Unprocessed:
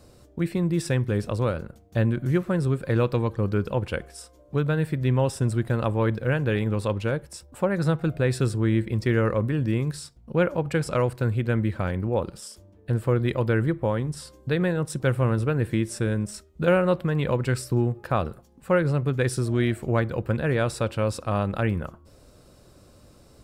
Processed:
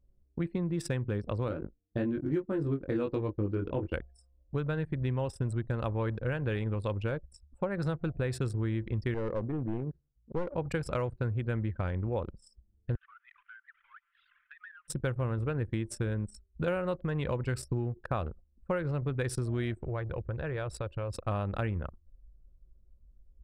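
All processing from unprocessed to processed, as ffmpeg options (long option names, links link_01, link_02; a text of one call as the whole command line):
ffmpeg -i in.wav -filter_complex "[0:a]asettb=1/sr,asplit=3[link_01][link_02][link_03];[link_01]atrim=end=1.484[link_04];[link_02]atrim=start=1.48:end=3.94,asetpts=PTS-STARTPTS,afade=type=in:duration=0.004:curve=qsin,afade=type=out:start_time=2.456:duration=0.004:curve=qsin,agate=range=-8dB:threshold=-39dB:ratio=16:release=100:detection=peak,equalizer=frequency=310:width=2.2:gain=13.5,flanger=delay=19:depth=3:speed=1.1[link_05];[link_03]atrim=start=3.936[link_06];[link_04][link_05]acrossfade=duration=0.004:curve1=hsin:curve2=qsin[link_07];[link_07][link_06]acrossfade=duration=0.004:curve1=qsin:curve2=hsin,asettb=1/sr,asplit=3[link_08][link_09][link_10];[link_08]atrim=end=9.144[link_11];[link_09]atrim=start=9.14:end=10.51,asetpts=PTS-STARTPTS,afade=type=in:duration=0.004:curve=qsin,afade=type=out:start_time=1.366:duration=0.004:curve=qsin,bandpass=frequency=360:width_type=q:width=0.69,aeval=exprs='clip(val(0),-1,0.0708)':channel_layout=same[link_12];[link_10]atrim=start=10.506[link_13];[link_11][link_12]acrossfade=duration=0.004:curve1=hsin:curve2=qsin[link_14];[link_14][link_13]acrossfade=duration=0.004:curve1=qsin:curve2=hsin,asettb=1/sr,asplit=3[link_15][link_16][link_17];[link_15]atrim=end=12.954[link_18];[link_16]atrim=start=12.95:end=14.88,asetpts=PTS-STARTPTS,afade=type=in:duration=0.004:curve=qsin,afade=type=out:start_time=1.926:duration=0.004:curve=qsin,aeval=exprs='val(0)+0.5*0.0473*sgn(val(0))':channel_layout=same,asuperpass=centerf=2100:order=8:qfactor=0.92,acompressor=threshold=-39dB:ratio=3:attack=3.2:release=140:knee=1:detection=peak[link_19];[link_17]atrim=start=14.876[link_20];[link_18][link_19]acrossfade=duration=0.004:curve1=hsin:curve2=qsin[link_21];[link_21][link_20]acrossfade=duration=0.004:curve1=qsin:curve2=hsin,asettb=1/sr,asplit=3[link_22][link_23][link_24];[link_22]atrim=end=19.834[link_25];[link_23]atrim=start=19.83:end=21.13,asetpts=PTS-STARTPTS,afade=type=in:duration=0.004:curve=qsin,afade=type=out:start_time=1.296:duration=0.004:curve=qsin,equalizer=frequency=240:width_type=o:width=0.33:gain=-13,acompressor=threshold=-29dB:ratio=3:attack=3.2:release=140:knee=1:detection=peak[link_26];[link_24]atrim=start=21.126[link_27];[link_25][link_26]acrossfade=duration=0.004:curve1=hsin:curve2=qsin[link_28];[link_28][link_27]acrossfade=duration=0.004:curve1=qsin:curve2=hsin,anlmdn=6.31,asubboost=boost=3:cutoff=82,acompressor=threshold=-26dB:ratio=4,volume=-2.5dB" out.wav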